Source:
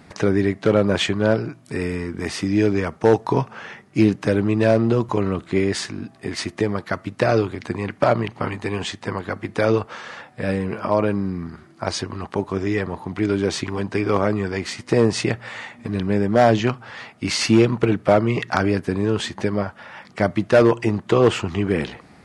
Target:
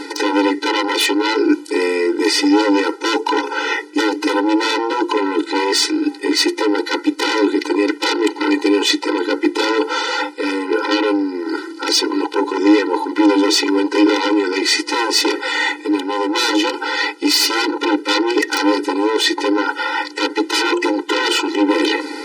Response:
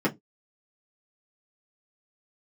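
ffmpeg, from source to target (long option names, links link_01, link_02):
-filter_complex "[0:a]highpass=frequency=120:width=0.5412,highpass=frequency=120:width=1.3066,aeval=exprs='0.794*sin(PI/2*7.94*val(0)/0.794)':channel_layout=same,areverse,acompressor=threshold=-15dB:ratio=16,areverse,equalizer=frequency=4500:width=2:gain=6.5,asplit=2[link_01][link_02];[1:a]atrim=start_sample=2205,lowshelf=frequency=340:gain=12[link_03];[link_02][link_03]afir=irnorm=-1:irlink=0,volume=-28dB[link_04];[link_01][link_04]amix=inputs=2:normalize=0,afftfilt=real='re*eq(mod(floor(b*sr/1024/260),2),1)':imag='im*eq(mod(floor(b*sr/1024/260),2),1)':win_size=1024:overlap=0.75,volume=2dB"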